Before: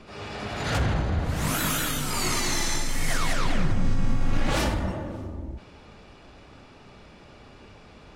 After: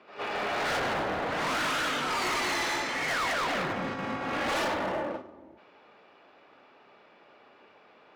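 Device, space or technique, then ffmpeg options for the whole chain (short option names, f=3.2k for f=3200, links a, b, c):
walkie-talkie: -af "highpass=440,lowpass=2.7k,asoftclip=type=hard:threshold=-34.5dB,agate=range=-11dB:threshold=-41dB:ratio=16:detection=peak,volume=7.5dB"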